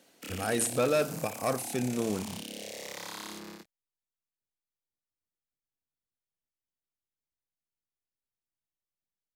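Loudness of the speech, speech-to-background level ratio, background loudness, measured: −30.5 LKFS, 10.5 dB, −41.0 LKFS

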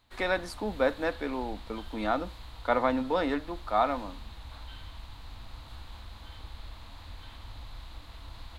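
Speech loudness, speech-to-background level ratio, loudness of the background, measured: −30.5 LKFS, 16.5 dB, −47.0 LKFS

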